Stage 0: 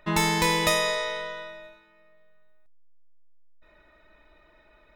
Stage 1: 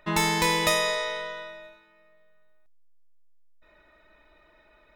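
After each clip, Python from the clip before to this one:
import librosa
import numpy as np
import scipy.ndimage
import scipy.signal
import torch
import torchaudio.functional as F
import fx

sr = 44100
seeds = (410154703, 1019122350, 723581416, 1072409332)

y = fx.low_shelf(x, sr, hz=230.0, db=-3.5)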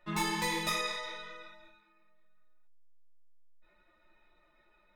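y = x + 0.52 * np.pad(x, (int(5.6 * sr / 1000.0), 0))[:len(x)]
y = fx.ensemble(y, sr)
y = F.gain(torch.from_numpy(y), -7.0).numpy()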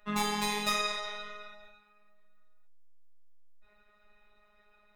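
y = fx.robotise(x, sr, hz=208.0)
y = F.gain(torch.from_numpy(y), 4.0).numpy()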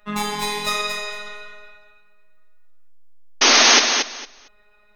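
y = fx.spec_paint(x, sr, seeds[0], shape='noise', start_s=3.41, length_s=0.39, low_hz=220.0, high_hz=6600.0, level_db=-19.0)
y = fx.echo_feedback(y, sr, ms=228, feedback_pct=18, wet_db=-6.0)
y = F.gain(torch.from_numpy(y), 6.0).numpy()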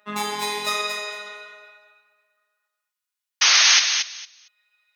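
y = fx.filter_sweep_highpass(x, sr, from_hz=270.0, to_hz=2700.0, start_s=1.12, end_s=4.36, q=0.8)
y = F.gain(torch.from_numpy(y), -1.5).numpy()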